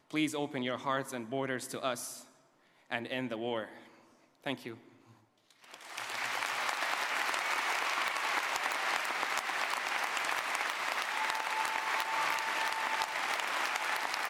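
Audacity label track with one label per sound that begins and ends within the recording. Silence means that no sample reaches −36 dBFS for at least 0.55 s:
2.900000	3.650000	sound
4.460000	4.710000	sound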